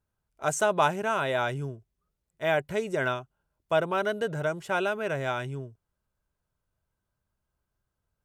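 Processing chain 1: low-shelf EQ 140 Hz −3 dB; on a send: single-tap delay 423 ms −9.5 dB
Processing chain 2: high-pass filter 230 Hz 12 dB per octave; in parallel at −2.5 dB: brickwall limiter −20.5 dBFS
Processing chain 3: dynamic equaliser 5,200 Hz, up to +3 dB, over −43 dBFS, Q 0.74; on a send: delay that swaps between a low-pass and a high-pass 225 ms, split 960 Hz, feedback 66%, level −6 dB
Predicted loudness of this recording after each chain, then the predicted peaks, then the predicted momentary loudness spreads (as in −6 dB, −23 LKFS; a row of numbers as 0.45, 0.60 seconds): −28.5, −25.5, −28.0 LKFS; −9.5, −8.0, −9.0 dBFS; 13, 10, 15 LU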